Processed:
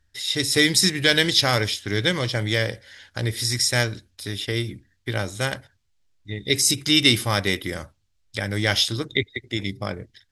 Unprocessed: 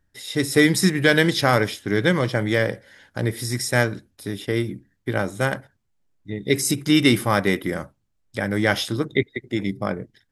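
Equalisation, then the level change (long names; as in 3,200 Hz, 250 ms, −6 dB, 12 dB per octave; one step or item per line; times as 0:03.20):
low shelf with overshoot 120 Hz +7 dB, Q 1.5
dynamic equaliser 1,500 Hz, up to −5 dB, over −34 dBFS, Q 0.74
parametric band 4,300 Hz +13.5 dB 2.7 octaves
−4.5 dB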